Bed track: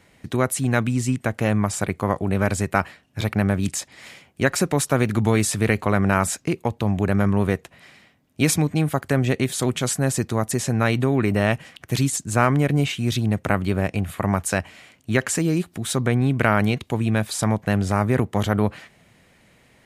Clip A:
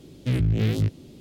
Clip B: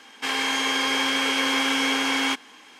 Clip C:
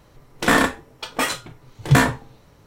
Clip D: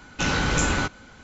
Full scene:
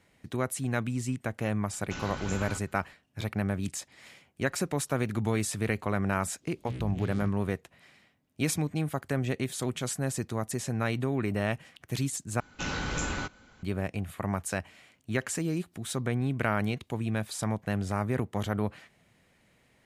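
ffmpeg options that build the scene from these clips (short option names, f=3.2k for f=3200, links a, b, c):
-filter_complex "[4:a]asplit=2[a][b];[0:a]volume=-9.5dB[c];[1:a]aresample=22050,aresample=44100[d];[c]asplit=2[e][f];[e]atrim=end=12.404[g];[b]atrim=end=1.23,asetpts=PTS-STARTPTS,volume=-9.5dB[h];[f]atrim=start=13.626[i];[a]atrim=end=1.23,asetpts=PTS-STARTPTS,volume=-15.5dB,afade=t=in:d=0.004:c=hsin,afade=t=out:st=1.226:d=0.004:c=hsin,adelay=1710[j];[d]atrim=end=1.2,asetpts=PTS-STARTPTS,volume=-14.5dB,afade=t=in:d=0.05,afade=t=out:st=1.15:d=0.05,adelay=6400[k];[g][h]acrossfade=d=0.004:c1=hsin:c2=hsin[l];[l][i]acrossfade=d=0.004:c1=hsin:c2=hsin[m];[m][j][k]amix=inputs=3:normalize=0"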